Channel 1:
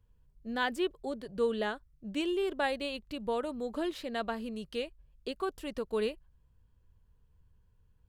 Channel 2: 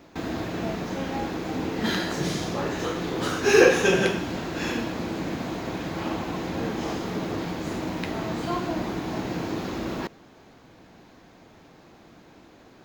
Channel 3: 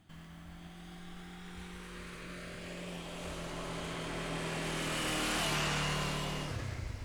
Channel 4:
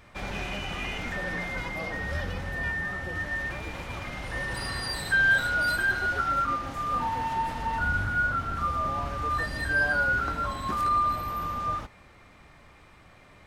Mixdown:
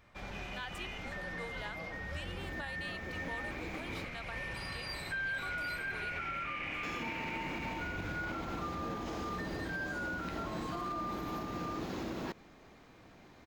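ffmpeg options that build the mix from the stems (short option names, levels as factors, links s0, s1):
-filter_complex "[0:a]highpass=920,volume=0.531,asplit=2[s0][s1];[1:a]adelay=2250,volume=0.422,asplit=3[s2][s3][s4];[s2]atrim=end=4.05,asetpts=PTS-STARTPTS,afade=t=out:st=4.046:d=0.004:c=hsin[s5];[s3]atrim=start=4.05:end=6.83,asetpts=PTS-STARTPTS,volume=0[s6];[s4]atrim=start=6.83,asetpts=PTS-STARTPTS,afade=t=in:d=0.004:c=hsin[s7];[s5][s6][s7]concat=n=3:v=0:a=1[s8];[2:a]lowpass=f=2300:t=q:w=9.5,adelay=1550,volume=0.316[s9];[3:a]equalizer=f=9600:t=o:w=0.5:g=-6.5,volume=0.335[s10];[s1]apad=whole_len=665583[s11];[s8][s11]sidechaincompress=threshold=0.00158:ratio=3:attack=16:release=534[s12];[s0][s12][s9][s10]amix=inputs=4:normalize=0,alimiter=level_in=2:limit=0.0631:level=0:latency=1:release=85,volume=0.501"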